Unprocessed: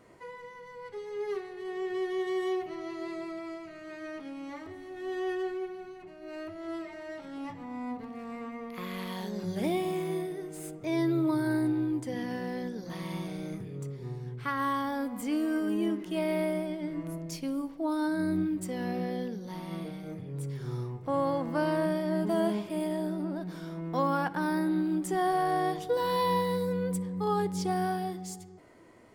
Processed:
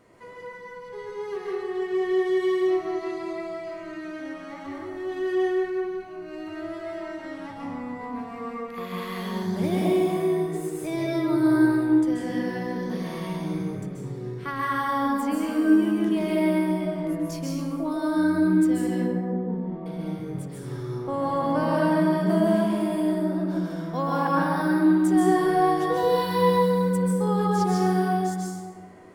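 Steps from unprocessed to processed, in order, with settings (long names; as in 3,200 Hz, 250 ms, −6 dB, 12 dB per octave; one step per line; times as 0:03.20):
0:18.87–0:19.86: Bessel low-pass filter 660 Hz, order 2
dense smooth reverb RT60 1.6 s, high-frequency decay 0.45×, pre-delay 120 ms, DRR −4.5 dB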